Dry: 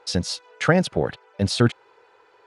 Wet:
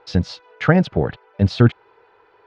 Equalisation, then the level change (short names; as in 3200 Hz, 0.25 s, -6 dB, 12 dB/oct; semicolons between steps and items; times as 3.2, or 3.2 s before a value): air absorption 220 m; low shelf 140 Hz +8 dB; notch 530 Hz, Q 12; +2.5 dB